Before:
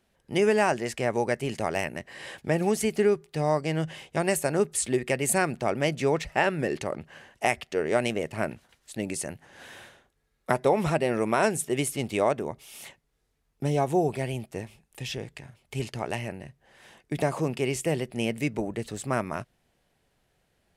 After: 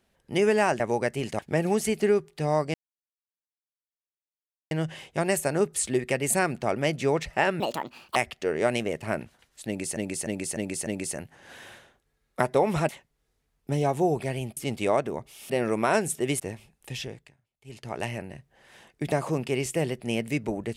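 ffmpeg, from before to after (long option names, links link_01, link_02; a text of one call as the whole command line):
ffmpeg -i in.wav -filter_complex "[0:a]asplit=16[link_01][link_02][link_03][link_04][link_05][link_06][link_07][link_08][link_09][link_10][link_11][link_12][link_13][link_14][link_15][link_16];[link_01]atrim=end=0.802[link_17];[link_02]atrim=start=1.058:end=1.652[link_18];[link_03]atrim=start=2.348:end=3.7,asetpts=PTS-STARTPTS,afade=type=out:start_time=1.348:duration=0.004:curve=hsin,apad=pad_dur=1.97[link_19];[link_04]atrim=start=3.7:end=6.594,asetpts=PTS-STARTPTS,afade=type=in:duration=0.004:curve=hsin[link_20];[link_05]atrim=start=6.59:end=7.46,asetpts=PTS-STARTPTS,asetrate=68796,aresample=44100,atrim=end_sample=24594,asetpts=PTS-STARTPTS[link_21];[link_06]atrim=start=7.456:end=9.272[link_22];[link_07]atrim=start=8.968:end=9.272[link_23];[link_08]atrim=start=8.968:end=9.272[link_24];[link_09]atrim=start=8.968:end=9.272[link_25];[link_10]atrim=start=8.968:end=10.992[link_26];[link_11]atrim=start=12.818:end=14.502[link_27];[link_12]atrim=start=11.888:end=12.822[link_28];[link_13]atrim=start=10.988:end=11.892[link_29];[link_14]atrim=start=14.498:end=15.46,asetpts=PTS-STARTPTS,afade=type=out:start_time=0.572:duration=0.39:silence=0.0749894[link_30];[link_15]atrim=start=15.46:end=15.74,asetpts=PTS-STARTPTS,volume=-22.5dB[link_31];[link_16]atrim=start=15.74,asetpts=PTS-STARTPTS,afade=type=in:duration=0.39:silence=0.0749894[link_32];[link_17][link_18]acrossfade=duration=0.004:curve1=hsin:curve2=hsin[link_33];[link_19][link_20]concat=n=2:v=0:a=1[link_34];[link_33][link_34]acrossfade=duration=0.004:curve1=hsin:curve2=hsin[link_35];[link_35][link_21]acrossfade=duration=0.004:curve1=hsin:curve2=hsin[link_36];[link_36][link_22]acrossfade=duration=0.004:curve1=hsin:curve2=hsin[link_37];[link_37][link_23]acrossfade=duration=0.004:curve1=hsin:curve2=hsin[link_38];[link_38][link_24]acrossfade=duration=0.004:curve1=hsin:curve2=hsin[link_39];[link_39][link_25]acrossfade=duration=0.004:curve1=hsin:curve2=hsin[link_40];[link_40][link_26]acrossfade=duration=0.004:curve1=hsin:curve2=hsin[link_41];[link_41][link_27]acrossfade=duration=0.004:curve1=hsin:curve2=hsin[link_42];[link_42][link_28]acrossfade=duration=0.004:curve1=hsin:curve2=hsin[link_43];[link_43][link_29]acrossfade=duration=0.004:curve1=hsin:curve2=hsin[link_44];[link_30][link_31][link_32]concat=n=3:v=0:a=1[link_45];[link_44][link_45]acrossfade=duration=0.004:curve1=hsin:curve2=hsin" out.wav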